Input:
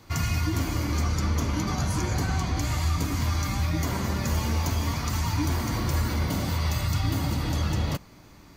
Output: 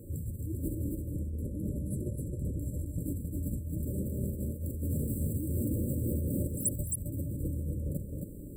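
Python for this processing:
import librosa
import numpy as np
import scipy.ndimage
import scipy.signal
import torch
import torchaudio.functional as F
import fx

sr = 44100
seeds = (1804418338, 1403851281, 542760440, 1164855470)

y = fx.highpass(x, sr, hz=100.0, slope=6, at=(4.85, 6.47))
y = fx.over_compress(y, sr, threshold_db=-31.0, ratio=-0.5)
y = fx.spec_paint(y, sr, seeds[0], shape='rise', start_s=6.47, length_s=0.22, low_hz=620.0, high_hz=12000.0, level_db=-21.0)
y = 10.0 ** (-24.5 / 20.0) * np.tanh(y / 10.0 ** (-24.5 / 20.0))
y = fx.brickwall_bandstop(y, sr, low_hz=600.0, high_hz=7400.0)
y = y + 10.0 ** (-4.0 / 20.0) * np.pad(y, (int(267 * sr / 1000.0), 0))[:len(y)]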